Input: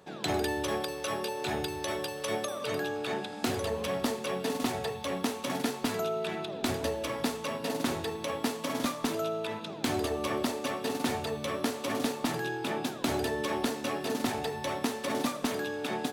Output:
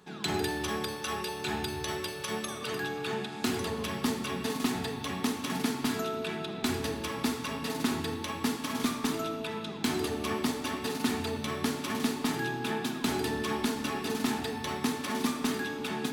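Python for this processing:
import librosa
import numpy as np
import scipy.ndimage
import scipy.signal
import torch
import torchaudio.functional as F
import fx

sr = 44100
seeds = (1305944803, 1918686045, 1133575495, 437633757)

y = fx.peak_eq(x, sr, hz=580.0, db=-14.0, octaves=0.47)
y = fx.room_shoebox(y, sr, seeds[0], volume_m3=3200.0, walls='mixed', distance_m=1.4)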